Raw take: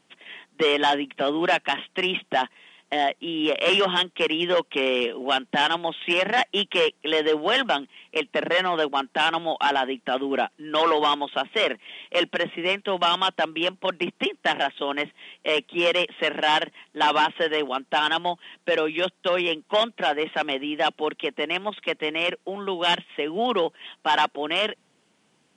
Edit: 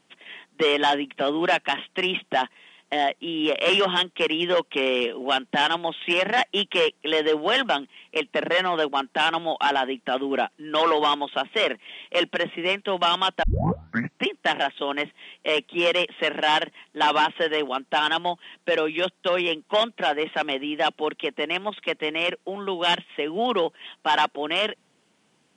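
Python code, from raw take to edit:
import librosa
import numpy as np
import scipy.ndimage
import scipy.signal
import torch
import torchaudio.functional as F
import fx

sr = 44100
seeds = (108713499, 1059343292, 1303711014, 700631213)

y = fx.edit(x, sr, fx.tape_start(start_s=13.43, length_s=0.84), tone=tone)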